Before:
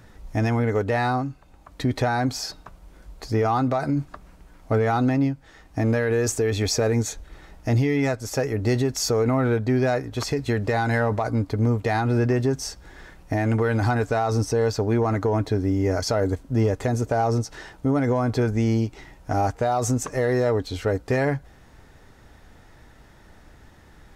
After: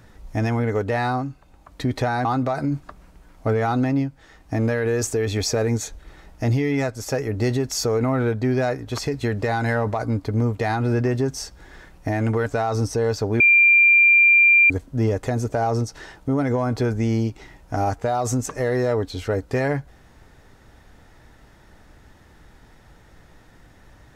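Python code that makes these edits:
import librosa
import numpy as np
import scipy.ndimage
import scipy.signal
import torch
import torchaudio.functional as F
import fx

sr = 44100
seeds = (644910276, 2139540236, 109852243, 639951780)

y = fx.edit(x, sr, fx.cut(start_s=2.25, length_s=1.25),
    fx.cut(start_s=13.71, length_s=0.32),
    fx.bleep(start_s=14.97, length_s=1.3, hz=2380.0, db=-10.5), tone=tone)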